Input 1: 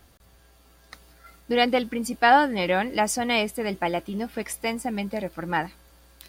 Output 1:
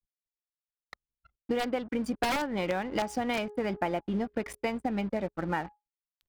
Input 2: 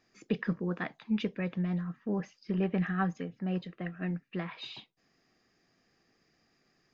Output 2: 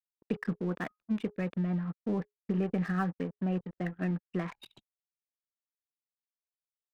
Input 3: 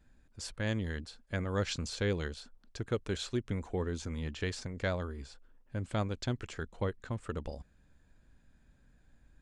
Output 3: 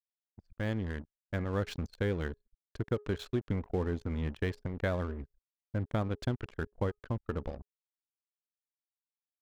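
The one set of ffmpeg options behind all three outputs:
ffmpeg -i in.wav -af "dynaudnorm=framelen=380:gausssize=11:maxgain=3dB,aeval=exprs='(mod(3.16*val(0)+1,2)-1)/3.16':channel_layout=same,lowpass=frequency=1900:poles=1,acompressor=threshold=-27dB:ratio=20,aeval=exprs='sgn(val(0))*max(abs(val(0))-0.00355,0)':channel_layout=same,bandreject=frequency=417.7:width_type=h:width=4,bandreject=frequency=835.4:width_type=h:width=4,bandreject=frequency=1253.1:width_type=h:width=4,bandreject=frequency=1670.8:width_type=h:width=4,anlmdn=0.00398,volume=2dB" out.wav

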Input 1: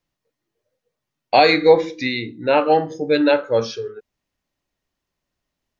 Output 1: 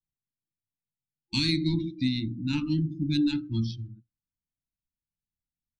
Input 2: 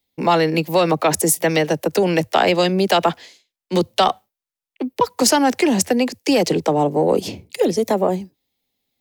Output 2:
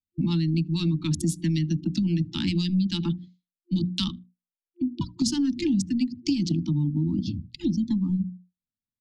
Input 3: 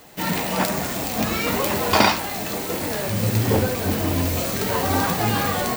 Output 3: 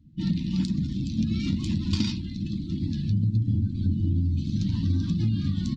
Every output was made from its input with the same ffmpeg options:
ffmpeg -i in.wav -filter_complex "[0:a]asplit=2[link_01][link_02];[link_02]aeval=exprs='sgn(val(0))*max(abs(val(0))-0.0422,0)':channel_layout=same,volume=-7dB[link_03];[link_01][link_03]amix=inputs=2:normalize=0,adynamicsmooth=sensitivity=2:basefreq=3100,bass=frequency=250:gain=5,treble=frequency=4000:gain=6,bandreject=frequency=60:width_type=h:width=6,bandreject=frequency=120:width_type=h:width=6,bandreject=frequency=180:width_type=h:width=6,bandreject=frequency=240:width_type=h:width=6,bandreject=frequency=300:width_type=h:width=6,afftfilt=real='re*(1-between(b*sr/4096,350,830))':imag='im*(1-between(b*sr/4096,350,830))':win_size=4096:overlap=0.75,firequalizer=gain_entry='entry(180,0);entry(750,-30);entry(3500,-9);entry(16000,-25)':delay=0.05:min_phase=1,asplit=2[link_04][link_05];[link_05]adelay=77,lowpass=frequency=2600:poles=1,volume=-22.5dB,asplit=2[link_06][link_07];[link_07]adelay=77,lowpass=frequency=2600:poles=1,volume=0.31[link_08];[link_04][link_06][link_08]amix=inputs=3:normalize=0,acompressor=threshold=-23dB:ratio=5,afftdn=noise_reduction=18:noise_floor=-48,volume=1.5dB" out.wav

